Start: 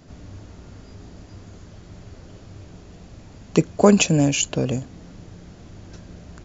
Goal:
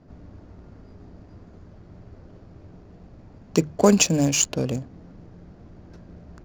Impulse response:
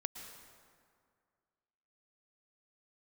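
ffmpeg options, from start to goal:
-af "bandreject=f=50:t=h:w=6,bandreject=f=100:t=h:w=6,bandreject=f=150:t=h:w=6,aexciter=amount=3.3:drive=2:freq=4.4k,adynamicsmooth=sensitivity=5.5:basefreq=1.5k,volume=-2.5dB"

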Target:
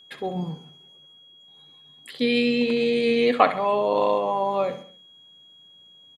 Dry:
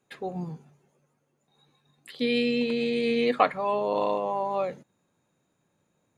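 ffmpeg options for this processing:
-af "aecho=1:1:66|132|198|264:0.237|0.107|0.048|0.0216,aeval=exprs='val(0)+0.00224*sin(2*PI*3300*n/s)':c=same,volume=4dB"

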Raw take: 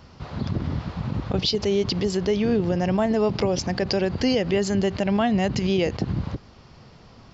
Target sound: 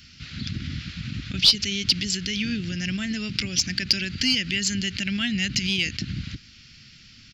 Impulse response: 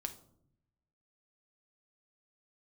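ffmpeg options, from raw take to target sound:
-filter_complex "[0:a]firequalizer=gain_entry='entry(260,0);entry(450,-19);entry(940,-25);entry(1400,3);entry(2400,14)':delay=0.05:min_phase=1,asplit=2[a][b];[b]aeval=exprs='clip(val(0),-1,0.237)':c=same,volume=-9dB[c];[a][c]amix=inputs=2:normalize=0,volume=-7.5dB"

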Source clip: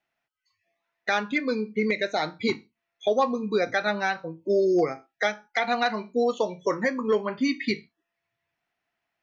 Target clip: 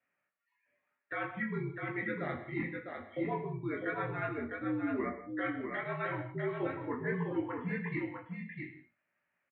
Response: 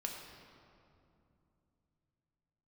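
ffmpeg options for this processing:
-filter_complex "[0:a]equalizer=f=740:t=o:w=1.2:g=-6.5,areverse,acompressor=threshold=-34dB:ratio=6,areverse,highpass=f=220:t=q:w=0.5412,highpass=f=220:t=q:w=1.307,lowpass=f=2.7k:t=q:w=0.5176,lowpass=f=2.7k:t=q:w=0.7071,lowpass=f=2.7k:t=q:w=1.932,afreqshift=-76,flanger=delay=16.5:depth=5.9:speed=1,aecho=1:1:633:0.562,asplit=2[a][b];[1:a]atrim=start_sample=2205,afade=t=out:st=0.19:d=0.01,atrim=end_sample=8820,asetrate=34839,aresample=44100[c];[b][c]afir=irnorm=-1:irlink=0,volume=1dB[d];[a][d]amix=inputs=2:normalize=0,asetrate=42777,aresample=44100,volume=-2.5dB"

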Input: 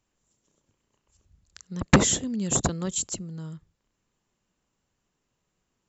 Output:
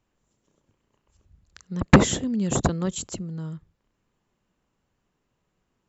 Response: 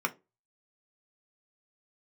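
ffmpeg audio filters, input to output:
-af "lowpass=f=2.5k:p=1,volume=4dB"

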